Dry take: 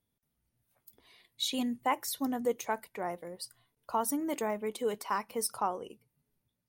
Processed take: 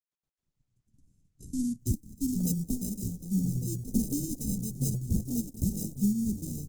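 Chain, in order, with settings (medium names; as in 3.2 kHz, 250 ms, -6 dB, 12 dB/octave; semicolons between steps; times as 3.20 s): companding laws mixed up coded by A; in parallel at -0.5 dB: compression 8:1, threshold -46 dBFS, peak gain reduction 20 dB; on the sum: dynamic bell 1.3 kHz, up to +5 dB, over -45 dBFS, Q 1.9; comb 6.6 ms, depth 48%; ever faster or slower copies 186 ms, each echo -6 st, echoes 2, each echo -6 dB; tilt EQ -3.5 dB/octave; on a send: delay 1158 ms -10.5 dB; on the sum: sample-and-hold 39×; elliptic band-stop 220–6700 Hz, stop band 70 dB; trim +2.5 dB; Opus 16 kbps 48 kHz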